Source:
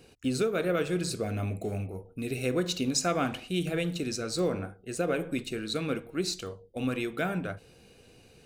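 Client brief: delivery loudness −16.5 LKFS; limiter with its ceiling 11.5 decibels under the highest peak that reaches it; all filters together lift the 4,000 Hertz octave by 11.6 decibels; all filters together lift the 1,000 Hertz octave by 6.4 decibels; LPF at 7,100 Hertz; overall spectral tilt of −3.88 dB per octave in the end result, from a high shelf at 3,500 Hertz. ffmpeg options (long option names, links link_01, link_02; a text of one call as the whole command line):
ffmpeg -i in.wav -af "lowpass=7100,equalizer=frequency=1000:width_type=o:gain=8.5,highshelf=frequency=3500:gain=7,equalizer=frequency=4000:width_type=o:gain=9,volume=13.5dB,alimiter=limit=-5dB:level=0:latency=1" out.wav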